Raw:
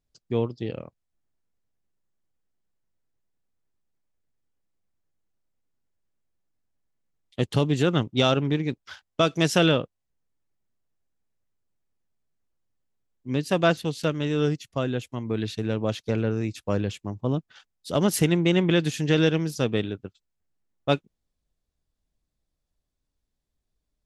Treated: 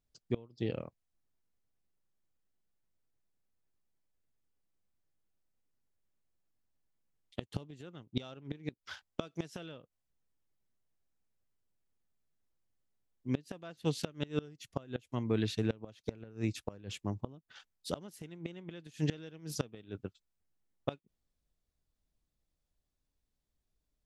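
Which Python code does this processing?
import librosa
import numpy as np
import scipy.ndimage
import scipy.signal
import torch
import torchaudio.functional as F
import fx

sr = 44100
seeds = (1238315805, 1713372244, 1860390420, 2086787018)

y = fx.gate_flip(x, sr, shuts_db=-15.0, range_db=-24)
y = F.gain(torch.from_numpy(y), -3.5).numpy()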